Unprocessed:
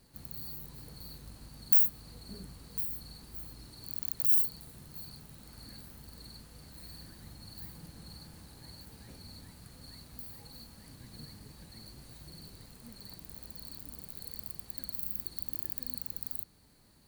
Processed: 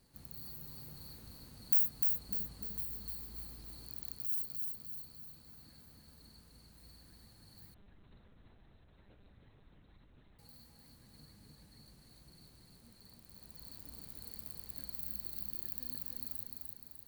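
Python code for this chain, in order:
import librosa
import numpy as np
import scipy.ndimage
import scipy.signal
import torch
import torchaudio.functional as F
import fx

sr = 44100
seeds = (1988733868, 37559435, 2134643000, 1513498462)

y = fx.rider(x, sr, range_db=3, speed_s=0.5)
y = fx.echo_feedback(y, sr, ms=300, feedback_pct=48, wet_db=-3.5)
y = fx.lpc_monotone(y, sr, seeds[0], pitch_hz=200.0, order=10, at=(7.74, 10.39))
y = y * librosa.db_to_amplitude(-8.5)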